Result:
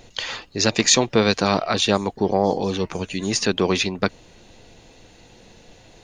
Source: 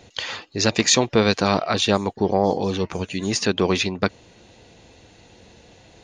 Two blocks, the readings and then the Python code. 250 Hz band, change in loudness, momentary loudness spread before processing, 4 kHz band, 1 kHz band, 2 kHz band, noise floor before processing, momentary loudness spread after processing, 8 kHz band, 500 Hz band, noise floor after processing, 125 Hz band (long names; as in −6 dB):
0.0 dB, +0.5 dB, 10 LU, +1.0 dB, 0.0 dB, +0.5 dB, −52 dBFS, 11 LU, +2.0 dB, 0.0 dB, −50 dBFS, −1.0 dB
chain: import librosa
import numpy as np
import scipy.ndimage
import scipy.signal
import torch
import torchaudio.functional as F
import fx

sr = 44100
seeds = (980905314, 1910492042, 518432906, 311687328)

y = scipy.signal.sosfilt(scipy.signal.butter(2, 86.0, 'highpass', fs=sr, output='sos'), x)
y = fx.high_shelf(y, sr, hz=6300.0, db=3.5)
y = fx.dmg_noise_colour(y, sr, seeds[0], colour='brown', level_db=-52.0)